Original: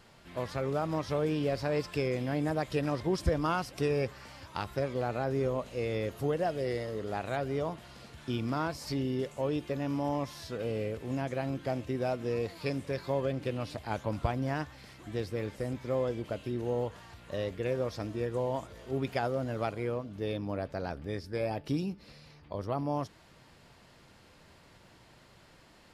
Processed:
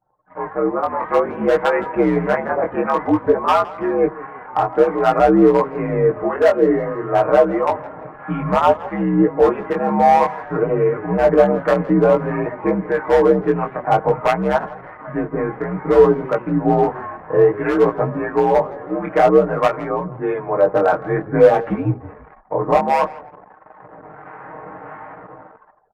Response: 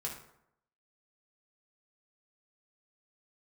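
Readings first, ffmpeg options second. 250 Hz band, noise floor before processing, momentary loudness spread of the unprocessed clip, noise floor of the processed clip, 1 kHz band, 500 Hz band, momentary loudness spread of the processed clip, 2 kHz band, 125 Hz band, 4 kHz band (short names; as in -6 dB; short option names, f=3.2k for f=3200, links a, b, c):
+15.0 dB, -59 dBFS, 7 LU, -44 dBFS, +19.5 dB, +17.5 dB, 12 LU, +14.5 dB, +8.5 dB, n/a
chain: -filter_complex "[0:a]aemphasis=mode=reproduction:type=cd,bandreject=f=1k:w=30,highpass=f=190:t=q:w=0.5412,highpass=f=190:t=q:w=1.307,lowpass=f=2.1k:t=q:w=0.5176,lowpass=f=2.1k:t=q:w=0.7071,lowpass=f=2.1k:t=q:w=1.932,afreqshift=-75,equalizer=f=900:t=o:w=1.8:g=13,aecho=1:1:6.5:0.97,dynaudnorm=f=290:g=7:m=15.5dB,asoftclip=type=hard:threshold=-8dB,acrossover=split=840[a][b];[a]aeval=exprs='val(0)*(1-0.5/2+0.5/2*cos(2*PI*1.5*n/s))':c=same[c];[b]aeval=exprs='val(0)*(1-0.5/2-0.5/2*cos(2*PI*1.5*n/s))':c=same[d];[c][d]amix=inputs=2:normalize=0,flanger=delay=15.5:depth=7.7:speed=0.55,asplit=2[e][f];[f]asplit=3[g][h][i];[g]adelay=164,afreqshift=-31,volume=-19dB[j];[h]adelay=328,afreqshift=-62,volume=-27.4dB[k];[i]adelay=492,afreqshift=-93,volume=-35.8dB[l];[j][k][l]amix=inputs=3:normalize=0[m];[e][m]amix=inputs=2:normalize=0,anlmdn=0.0631,volume=6dB"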